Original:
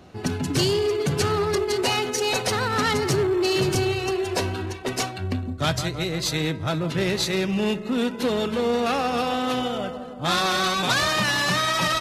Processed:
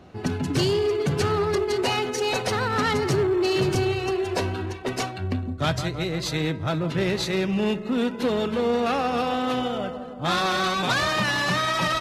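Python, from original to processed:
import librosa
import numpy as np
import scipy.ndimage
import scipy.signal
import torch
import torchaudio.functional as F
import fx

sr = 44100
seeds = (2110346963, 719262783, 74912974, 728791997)

y = fx.high_shelf(x, sr, hz=4500.0, db=-8.0)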